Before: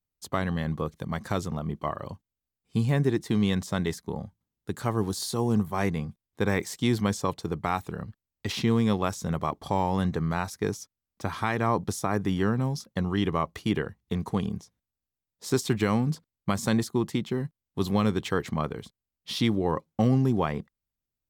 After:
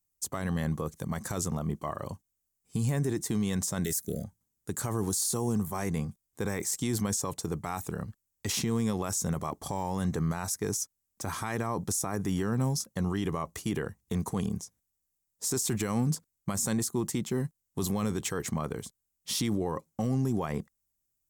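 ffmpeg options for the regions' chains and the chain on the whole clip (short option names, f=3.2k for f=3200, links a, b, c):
-filter_complex "[0:a]asettb=1/sr,asplit=3[a][b][c];[a]atrim=end=3.844[d];[b]atrim=start=3.84:end=4.24,asetpts=PTS-STARTPTS,afade=t=in:d=0.004:c=qsin,afade=t=out:st=0.396:d=0.004:c=qsin,asuperstop=centerf=950:order=20:qfactor=1.6,aemphasis=mode=production:type=50fm[e];[c]atrim=start=4.236[f];[d][e]acrossfade=d=0.004:c1=hsin:c2=qsin[g];[g][f]acrossfade=d=0.004:c1=qsin:c2=hsin,highshelf=f=5.3k:t=q:w=1.5:g=10.5,alimiter=limit=-20.5dB:level=0:latency=1:release=25"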